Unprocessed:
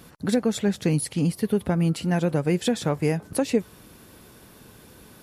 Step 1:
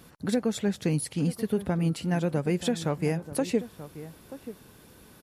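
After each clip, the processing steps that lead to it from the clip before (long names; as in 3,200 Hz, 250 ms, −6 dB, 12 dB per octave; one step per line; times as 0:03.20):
slap from a distant wall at 160 metres, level −14 dB
level −4 dB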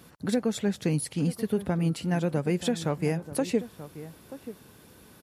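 high-pass filter 55 Hz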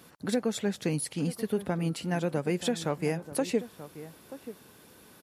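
low-shelf EQ 150 Hz −10 dB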